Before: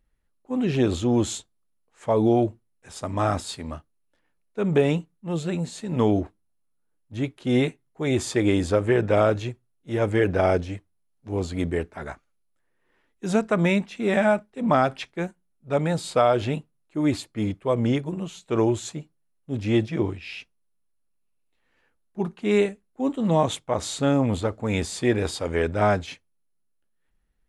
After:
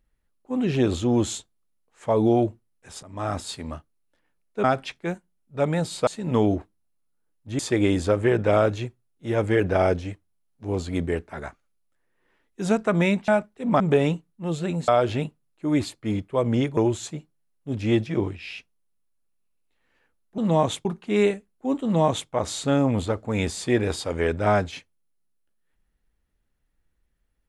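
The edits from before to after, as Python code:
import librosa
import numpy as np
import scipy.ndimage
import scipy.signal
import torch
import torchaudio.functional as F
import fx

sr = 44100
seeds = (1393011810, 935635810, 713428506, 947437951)

y = fx.edit(x, sr, fx.fade_in_from(start_s=3.03, length_s=0.46, floor_db=-19.5),
    fx.swap(start_s=4.64, length_s=1.08, other_s=14.77, other_length_s=1.43),
    fx.cut(start_s=7.24, length_s=0.99),
    fx.cut(start_s=13.92, length_s=0.33),
    fx.cut(start_s=18.09, length_s=0.5),
    fx.duplicate(start_s=23.18, length_s=0.47, to_s=22.2), tone=tone)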